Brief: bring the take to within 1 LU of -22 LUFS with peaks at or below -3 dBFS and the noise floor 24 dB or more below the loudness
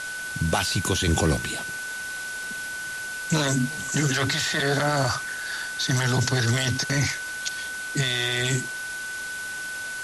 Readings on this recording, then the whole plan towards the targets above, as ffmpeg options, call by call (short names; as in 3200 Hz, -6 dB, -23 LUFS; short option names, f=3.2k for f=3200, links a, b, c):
steady tone 1500 Hz; tone level -31 dBFS; noise floor -33 dBFS; noise floor target -50 dBFS; loudness -25.5 LUFS; peak -10.0 dBFS; loudness target -22.0 LUFS
-> -af "bandreject=f=1.5k:w=30"
-af "afftdn=nr=17:nf=-33"
-af "volume=3.5dB"